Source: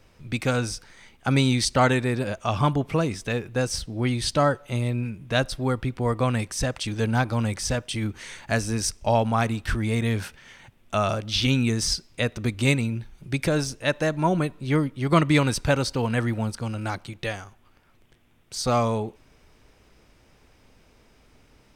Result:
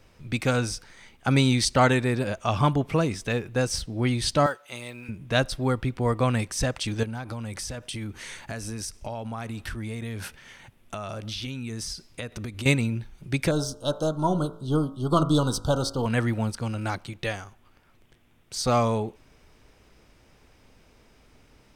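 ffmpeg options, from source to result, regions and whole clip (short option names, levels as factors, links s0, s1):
-filter_complex "[0:a]asettb=1/sr,asplit=3[s0][s1][s2];[s0]atrim=end=4.464[s3];[s1]atrim=start=4.46:end=5.09,asetpts=PTS-STARTPTS,afade=t=in:d=0.004:c=qsin,afade=t=out:st=0.626:d=0.004:c=qsin,highpass=f=1200:p=1,acrusher=bits=8:mode=log:mix=0:aa=0.000001[s4];[s2]atrim=start=5.086[s5];[s3][s4]acrossfade=d=0.004:c1=hsin:c2=qsin[s6];[s6][s5]acrossfade=d=0.004:c1=qsin:c2=hsin,asettb=1/sr,asplit=3[s7][s8][s9];[s7]atrim=end=7.034[s10];[s8]atrim=start=7.03:end=12.66,asetpts=PTS-STARTPTS,afade=t=in:d=0.004:c=qsin,afade=t=out:st=5.626:d=0.004:c=qsin,equalizer=f=11000:w=2.8:g=6.5,acompressor=threshold=0.0316:ratio=10:attack=3.2:release=140:knee=1:detection=peak[s11];[s9]atrim=start=12.656[s12];[s10][s11]acrossfade=d=0.004:c1=hsin:c2=qsin[s13];[s13][s12]acrossfade=d=0.004:c1=qsin:c2=hsin,asettb=1/sr,asplit=3[s14][s15][s16];[s14]atrim=end=13.514[s17];[s15]atrim=start=13.51:end=16.06,asetpts=PTS-STARTPTS,afade=t=in:d=0.004:c=qsin,afade=t=out:st=2.546:d=0.004:c=qsin,aeval=exprs='if(lt(val(0),0),0.708*val(0),val(0))':c=same,asuperstop=centerf=2100:order=12:qfactor=1.3,bandreject=f=55.08:t=h:w=4,bandreject=f=110.16:t=h:w=4,bandreject=f=165.24:t=h:w=4,bandreject=f=220.32:t=h:w=4,bandreject=f=275.4:t=h:w=4,bandreject=f=330.48:t=h:w=4,bandreject=f=385.56:t=h:w=4,bandreject=f=440.64:t=h:w=4,bandreject=f=495.72:t=h:w=4,bandreject=f=550.8:t=h:w=4,bandreject=f=605.88:t=h:w=4,bandreject=f=660.96:t=h:w=4,bandreject=f=716.04:t=h:w=4,bandreject=f=771.12:t=h:w=4,bandreject=f=826.2:t=h:w=4,bandreject=f=881.28:t=h:w=4,bandreject=f=936.36:t=h:w=4,bandreject=f=991.44:t=h:w=4,bandreject=f=1046.52:t=h:w=4,bandreject=f=1101.6:t=h:w=4,bandreject=f=1156.68:t=h:w=4,bandreject=f=1211.76:t=h:w=4,bandreject=f=1266.84:t=h:w=4,bandreject=f=1321.92:t=h:w=4,bandreject=f=1377:t=h:w=4,bandreject=f=1432.08:t=h:w=4,bandreject=f=1487.16:t=h:w=4,bandreject=f=1542.24:t=h:w=4,bandreject=f=1597.32:t=h:w=4,bandreject=f=1652.4:t=h:w=4,bandreject=f=1707.48:t=h:w=4,bandreject=f=1762.56:t=h:w=4,bandreject=f=1817.64:t=h:w=4,bandreject=f=1872.72:t=h:w=4,bandreject=f=1927.8:t=h:w=4[s18];[s16]atrim=start=16.056[s19];[s17][s18]acrossfade=d=0.004:c1=hsin:c2=qsin[s20];[s20][s19]acrossfade=d=0.004:c1=qsin:c2=hsin"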